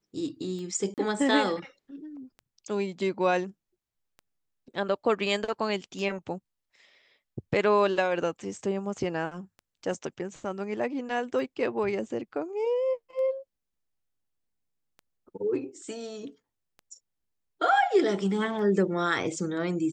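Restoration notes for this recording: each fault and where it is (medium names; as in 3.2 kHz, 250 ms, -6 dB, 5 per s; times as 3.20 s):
tick 33 1/3 rpm -32 dBFS
0.94–0.98 s: dropout 38 ms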